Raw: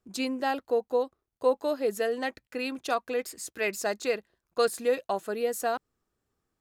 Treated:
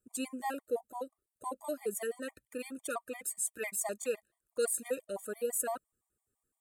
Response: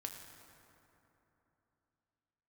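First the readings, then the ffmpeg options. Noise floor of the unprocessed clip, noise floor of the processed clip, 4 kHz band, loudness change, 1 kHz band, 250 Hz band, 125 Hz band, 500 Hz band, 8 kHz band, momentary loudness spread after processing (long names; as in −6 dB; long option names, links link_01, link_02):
−85 dBFS, below −85 dBFS, −12.0 dB, −7.0 dB, −9.0 dB, −8.5 dB, can't be measured, −9.0 dB, +4.0 dB, 10 LU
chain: -af "highshelf=frequency=6600:width_type=q:width=3:gain=10,afftfilt=real='re*gt(sin(2*PI*5.9*pts/sr)*(1-2*mod(floor(b*sr/1024/610),2)),0)':imag='im*gt(sin(2*PI*5.9*pts/sr)*(1-2*mod(floor(b*sr/1024/610),2)),0)':win_size=1024:overlap=0.75,volume=-5.5dB"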